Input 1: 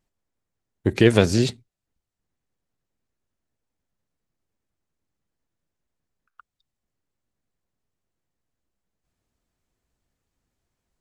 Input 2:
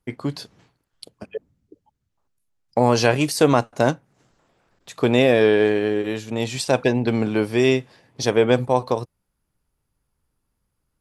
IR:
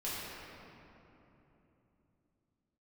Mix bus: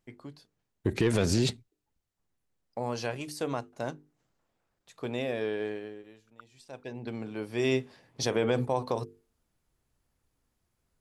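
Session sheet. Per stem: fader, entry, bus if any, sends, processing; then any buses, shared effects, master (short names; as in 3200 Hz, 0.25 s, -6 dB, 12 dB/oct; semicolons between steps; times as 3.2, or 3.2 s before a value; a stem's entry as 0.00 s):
-1.0 dB, 0.00 s, no send, soft clip -6 dBFS, distortion -17 dB
7.37 s -16 dB -> 7.83 s -5 dB, 0.00 s, no send, notches 50/100/150/200/250/300/350/400/450 Hz; auto duck -20 dB, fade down 0.65 s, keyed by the first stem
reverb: off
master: limiter -16.5 dBFS, peak gain reduction 8.5 dB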